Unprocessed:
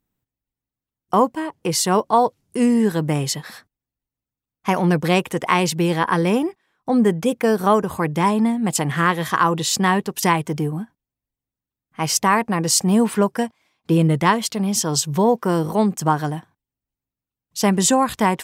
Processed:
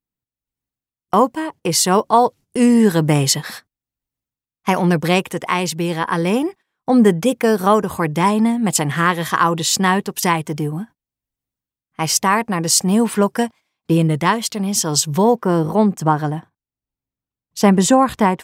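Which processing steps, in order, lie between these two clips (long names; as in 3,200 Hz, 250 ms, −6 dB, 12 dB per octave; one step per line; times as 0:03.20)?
noise gate −39 dBFS, range −12 dB
high-shelf EQ 2,400 Hz +2.5 dB, from 0:15.35 −8 dB
automatic gain control gain up to 16 dB
level −1.5 dB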